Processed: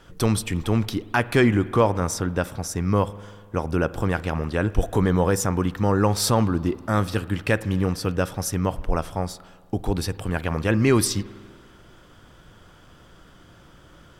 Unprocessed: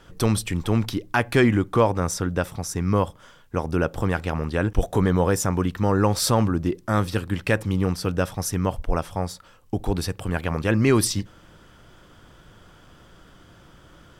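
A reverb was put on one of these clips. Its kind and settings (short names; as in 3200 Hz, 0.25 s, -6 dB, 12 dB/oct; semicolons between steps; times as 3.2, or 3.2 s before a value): spring tank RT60 1.8 s, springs 49 ms, chirp 65 ms, DRR 17 dB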